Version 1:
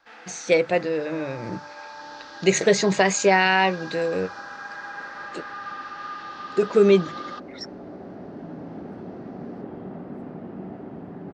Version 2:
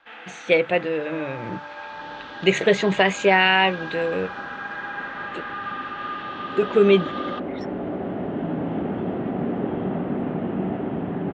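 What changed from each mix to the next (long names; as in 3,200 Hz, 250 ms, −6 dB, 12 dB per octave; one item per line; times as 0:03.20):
first sound +3.0 dB
second sound +10.5 dB
master: add high shelf with overshoot 4,000 Hz −8 dB, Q 3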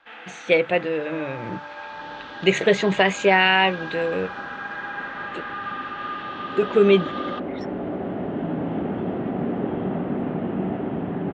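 nothing changed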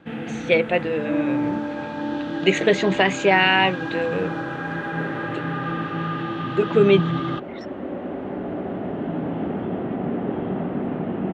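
first sound: remove Chebyshev band-pass filter 960–5,400 Hz, order 2
second sound: entry +0.65 s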